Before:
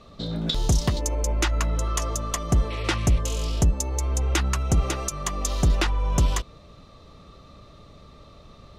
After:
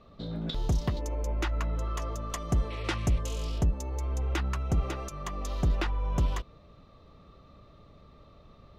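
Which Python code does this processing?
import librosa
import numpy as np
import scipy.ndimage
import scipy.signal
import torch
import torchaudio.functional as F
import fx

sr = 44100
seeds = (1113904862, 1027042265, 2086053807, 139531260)

y = fx.peak_eq(x, sr, hz=8400.0, db=fx.steps((0.0, -13.0), (2.3, -4.5), (3.58, -12.0)), octaves=1.8)
y = y * 10.0 ** (-6.0 / 20.0)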